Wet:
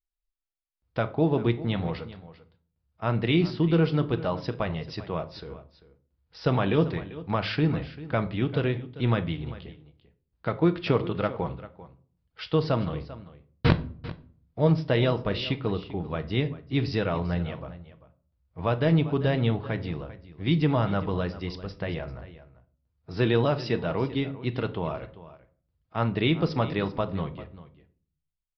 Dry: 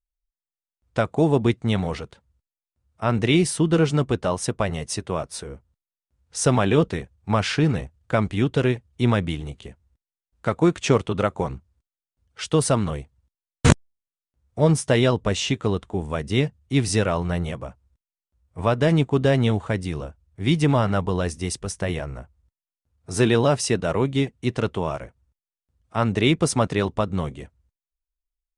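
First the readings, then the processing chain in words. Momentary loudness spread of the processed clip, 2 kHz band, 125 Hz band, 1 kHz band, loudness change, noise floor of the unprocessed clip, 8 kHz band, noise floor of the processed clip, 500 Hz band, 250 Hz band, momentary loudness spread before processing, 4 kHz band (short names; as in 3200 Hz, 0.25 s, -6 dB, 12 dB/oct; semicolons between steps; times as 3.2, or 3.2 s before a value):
17 LU, -5.0 dB, -3.5 dB, -5.0 dB, -4.5 dB, under -85 dBFS, under -30 dB, -80 dBFS, -5.0 dB, -4.5 dB, 13 LU, -5.5 dB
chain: echo 0.393 s -16.5 dB; shoebox room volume 450 m³, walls furnished, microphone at 0.6 m; downsampling 11025 Hz; gain -5.5 dB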